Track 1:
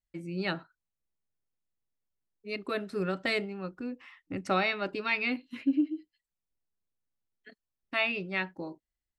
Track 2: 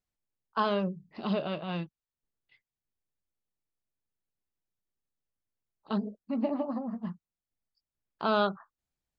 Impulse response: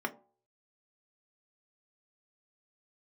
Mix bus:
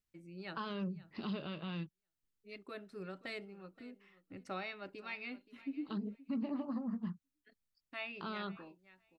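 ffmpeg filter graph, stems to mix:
-filter_complex "[0:a]volume=-14.5dB,asplit=2[a][b];[b]volume=-18dB[c];[1:a]equalizer=f=680:t=o:w=0.92:g=-12,alimiter=level_in=3.5dB:limit=-24dB:level=0:latency=1:release=87,volume=-3.5dB,volume=0dB[d];[c]aecho=0:1:524|1048|1572:1|0.16|0.0256[e];[a][d][e]amix=inputs=3:normalize=0,alimiter=level_in=6.5dB:limit=-24dB:level=0:latency=1:release=244,volume=-6.5dB"

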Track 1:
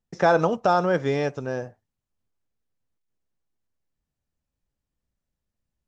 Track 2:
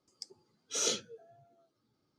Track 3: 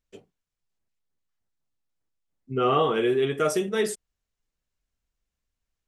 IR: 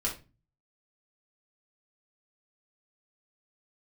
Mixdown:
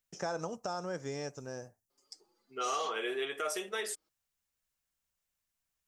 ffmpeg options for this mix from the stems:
-filter_complex "[0:a]acompressor=threshold=-22dB:ratio=2,aexciter=amount=6.8:drive=6.4:freq=5.2k,volume=-13.5dB,asplit=2[a][b];[1:a]highpass=400,alimiter=level_in=6dB:limit=-24dB:level=0:latency=1:release=14,volume=-6dB,asplit=2[c][d];[d]adelay=5.4,afreqshift=1.7[e];[c][e]amix=inputs=2:normalize=1,adelay=1900,volume=2.5dB[f];[2:a]highpass=700,volume=-0.5dB[g];[b]apad=whole_len=259152[h];[g][h]sidechaincompress=threshold=-55dB:ratio=4:attack=35:release=1320[i];[a][f][i]amix=inputs=3:normalize=0,alimiter=level_in=0.5dB:limit=-24dB:level=0:latency=1:release=263,volume=-0.5dB"

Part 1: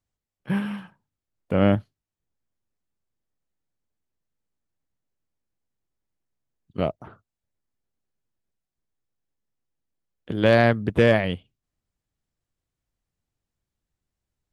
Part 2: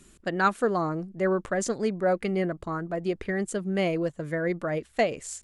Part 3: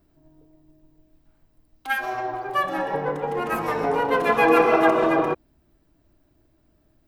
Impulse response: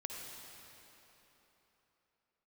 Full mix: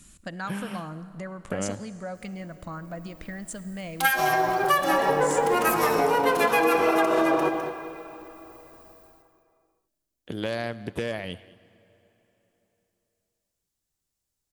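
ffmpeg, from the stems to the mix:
-filter_complex "[0:a]acompressor=threshold=-24dB:ratio=6,volume=-3dB,asplit=3[a][b][c];[b]volume=-16dB[d];[c]volume=-20.5dB[e];[1:a]bass=f=250:g=7,treble=f=4k:g=-6,acompressor=threshold=-30dB:ratio=6,equalizer=f=390:t=o:w=0.47:g=-13.5,volume=-2dB,asplit=2[f][g];[g]volume=-8dB[h];[2:a]dynaudnorm=f=560:g=3:m=10dB,adelay=2150,volume=-3.5dB,asplit=3[i][j][k];[j]volume=-10dB[l];[k]volume=-10.5dB[m];[3:a]atrim=start_sample=2205[n];[d][h][l]amix=inputs=3:normalize=0[o];[o][n]afir=irnorm=-1:irlink=0[p];[e][m]amix=inputs=2:normalize=0,aecho=0:1:206:1[q];[a][f][i][p][q]amix=inputs=5:normalize=0,bass=f=250:g=-4,treble=f=4k:g=12,acompressor=threshold=-18dB:ratio=6"

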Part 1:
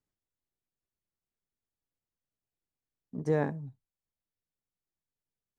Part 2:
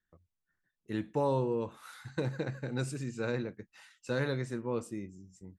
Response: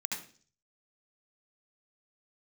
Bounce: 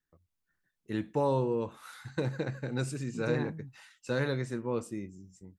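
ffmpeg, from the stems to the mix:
-filter_complex "[0:a]equalizer=f=610:t=o:w=0.57:g=-12.5,volume=-3.5dB[a];[1:a]dynaudnorm=f=100:g=5:m=5dB,volume=-3.5dB[b];[a][b]amix=inputs=2:normalize=0"

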